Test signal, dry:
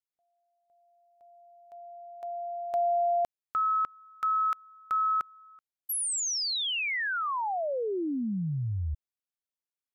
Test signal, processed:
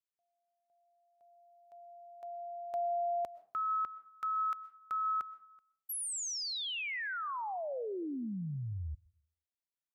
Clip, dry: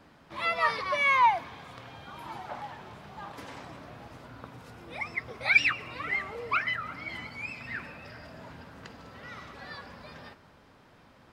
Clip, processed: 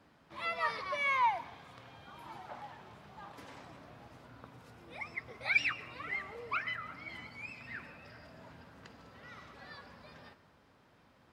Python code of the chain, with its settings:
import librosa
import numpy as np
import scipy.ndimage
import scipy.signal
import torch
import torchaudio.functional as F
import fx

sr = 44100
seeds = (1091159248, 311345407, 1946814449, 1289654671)

y = scipy.signal.sosfilt(scipy.signal.butter(2, 43.0, 'highpass', fs=sr, output='sos'), x)
y = fx.rev_freeverb(y, sr, rt60_s=0.44, hf_ratio=0.6, predelay_ms=85, drr_db=18.0)
y = F.gain(torch.from_numpy(y), -7.5).numpy()